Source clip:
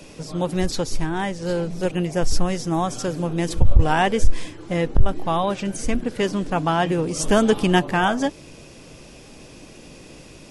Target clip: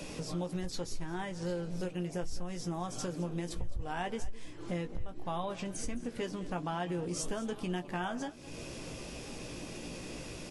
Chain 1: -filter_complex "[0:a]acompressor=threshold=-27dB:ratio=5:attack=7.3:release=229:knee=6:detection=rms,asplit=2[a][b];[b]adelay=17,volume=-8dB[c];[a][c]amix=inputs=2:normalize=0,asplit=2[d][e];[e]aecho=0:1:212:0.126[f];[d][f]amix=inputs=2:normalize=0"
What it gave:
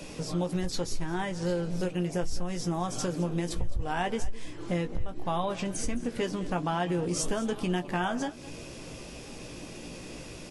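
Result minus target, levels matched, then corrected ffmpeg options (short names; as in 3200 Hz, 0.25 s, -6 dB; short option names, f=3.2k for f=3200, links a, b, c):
compressor: peak gain reduction -6.5 dB
-filter_complex "[0:a]acompressor=threshold=-35dB:ratio=5:attack=7.3:release=229:knee=6:detection=rms,asplit=2[a][b];[b]adelay=17,volume=-8dB[c];[a][c]amix=inputs=2:normalize=0,asplit=2[d][e];[e]aecho=0:1:212:0.126[f];[d][f]amix=inputs=2:normalize=0"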